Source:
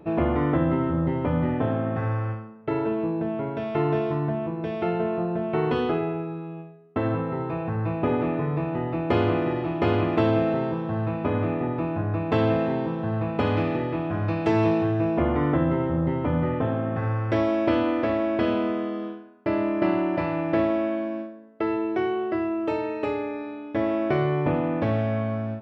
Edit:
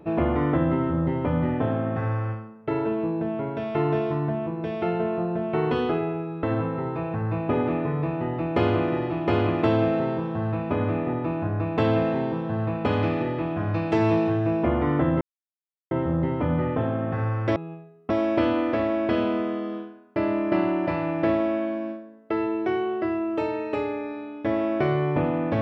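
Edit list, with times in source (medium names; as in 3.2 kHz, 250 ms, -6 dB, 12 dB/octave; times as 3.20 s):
6.43–6.97 s: move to 17.40 s
15.75 s: insert silence 0.70 s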